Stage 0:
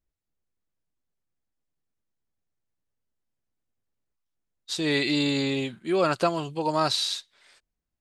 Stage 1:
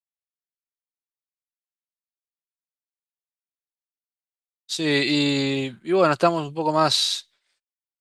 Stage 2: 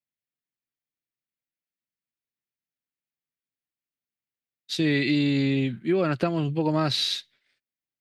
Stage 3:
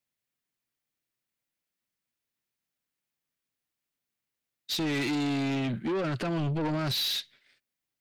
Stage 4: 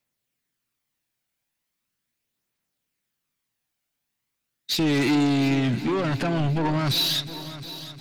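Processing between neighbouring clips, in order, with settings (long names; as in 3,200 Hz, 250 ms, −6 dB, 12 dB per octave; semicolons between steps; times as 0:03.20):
downward expander −48 dBFS; multiband upward and downward expander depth 40%; level +4 dB
octave-band graphic EQ 125/250/1,000/2,000/8,000 Hz +9/+7/−7/+6/−11 dB; downward compressor, threshold −20 dBFS, peak gain reduction 9 dB
brickwall limiter −20.5 dBFS, peak gain reduction 10.5 dB; soft clipping −32.5 dBFS, distortion −8 dB; level +6 dB
phase shifter 0.39 Hz, delay 1.4 ms, feedback 31%; echo machine with several playback heads 357 ms, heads first and second, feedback 51%, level −17 dB; level +5.5 dB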